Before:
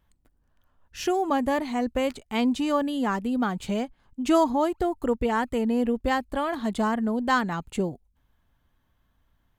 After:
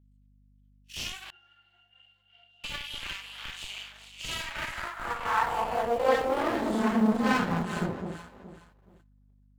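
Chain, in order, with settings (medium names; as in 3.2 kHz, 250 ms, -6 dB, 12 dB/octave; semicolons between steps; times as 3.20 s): phase randomisation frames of 200 ms; on a send: echo whose repeats swap between lows and highs 211 ms, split 870 Hz, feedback 53%, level -4 dB; on the sum: half-wave rectifier; high-pass sweep 2.8 kHz -> 62 Hz, 4.35–8.23 s; gate -59 dBFS, range -21 dB; hum 50 Hz, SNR 29 dB; 1.30–2.64 s: pitch-class resonator F, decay 0.26 s; in parallel at -11 dB: Schmitt trigger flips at -28.5 dBFS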